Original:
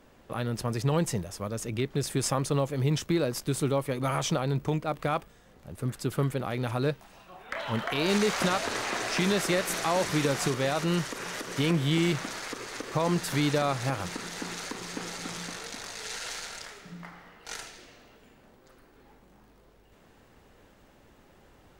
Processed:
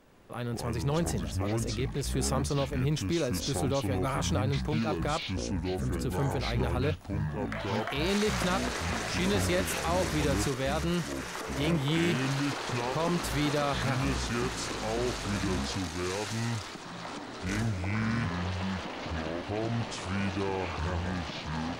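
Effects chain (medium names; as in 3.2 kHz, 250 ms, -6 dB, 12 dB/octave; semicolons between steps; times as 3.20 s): ever faster or slower copies 81 ms, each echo -7 st, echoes 2; transient shaper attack -4 dB, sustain 0 dB; trim -2.5 dB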